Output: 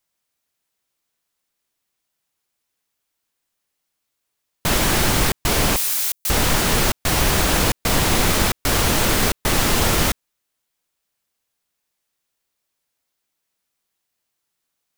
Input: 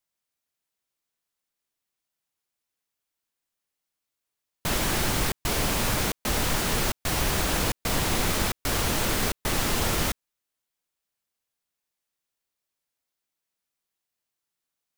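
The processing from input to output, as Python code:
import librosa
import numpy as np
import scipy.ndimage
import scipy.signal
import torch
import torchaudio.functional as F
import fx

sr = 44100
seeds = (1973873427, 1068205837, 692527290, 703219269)

y = fx.differentiator(x, sr, at=(5.76, 6.3))
y = y * 10.0 ** (7.5 / 20.0)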